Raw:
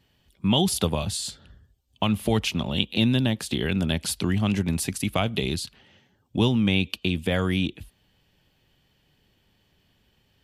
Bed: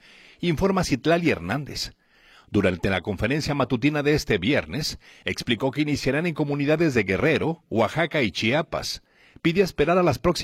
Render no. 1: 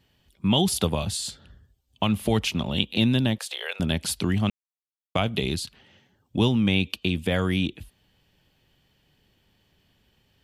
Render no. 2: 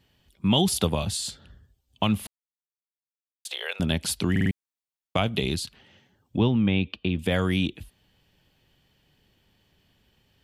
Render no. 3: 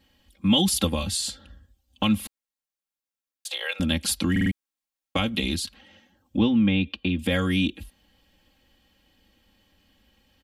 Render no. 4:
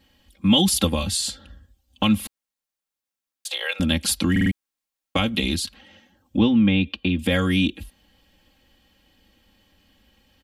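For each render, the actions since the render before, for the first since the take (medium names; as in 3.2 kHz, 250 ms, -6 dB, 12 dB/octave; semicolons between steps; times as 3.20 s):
3.38–3.80 s: elliptic high-pass 510 Hz, stop band 50 dB; 4.50–5.15 s: mute
2.27–3.45 s: mute; 4.31 s: stutter in place 0.05 s, 4 plays; 6.37–7.19 s: distance through air 300 m
dynamic bell 710 Hz, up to -6 dB, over -39 dBFS, Q 0.97; comb 3.7 ms, depth 93%
trim +3 dB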